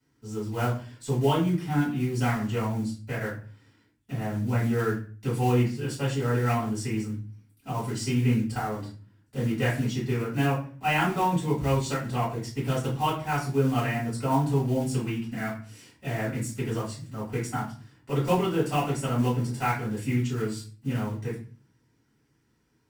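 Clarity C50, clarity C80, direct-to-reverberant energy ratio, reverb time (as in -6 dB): 7.0 dB, 12.0 dB, -9.5 dB, 0.40 s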